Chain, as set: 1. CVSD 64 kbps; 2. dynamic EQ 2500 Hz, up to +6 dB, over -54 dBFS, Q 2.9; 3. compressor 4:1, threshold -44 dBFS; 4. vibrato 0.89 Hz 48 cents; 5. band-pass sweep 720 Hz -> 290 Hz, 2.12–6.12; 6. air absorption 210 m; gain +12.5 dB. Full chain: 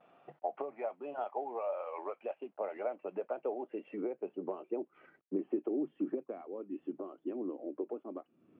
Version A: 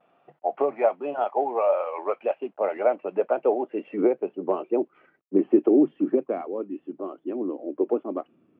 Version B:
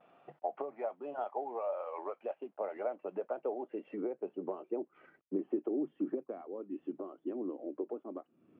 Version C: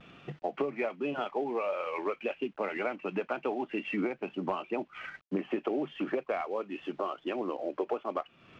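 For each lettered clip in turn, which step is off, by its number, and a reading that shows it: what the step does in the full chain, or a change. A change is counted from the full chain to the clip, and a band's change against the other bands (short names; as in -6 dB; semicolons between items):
3, mean gain reduction 11.5 dB; 2, 2 kHz band -1.5 dB; 5, 2 kHz band +13.0 dB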